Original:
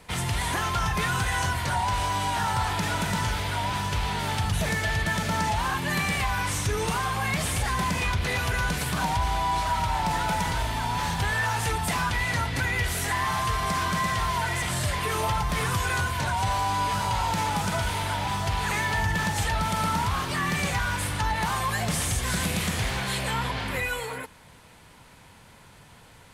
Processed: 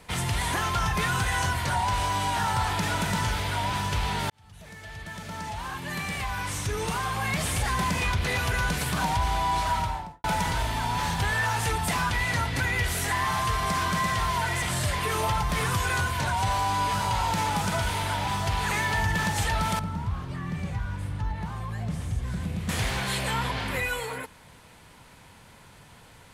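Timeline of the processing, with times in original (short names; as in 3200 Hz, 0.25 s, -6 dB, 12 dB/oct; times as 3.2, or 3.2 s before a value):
4.3–7.68 fade in
9.72–10.24 studio fade out
19.79–22.69 EQ curve 130 Hz 0 dB, 440 Hz -9 dB, 13000 Hz -22 dB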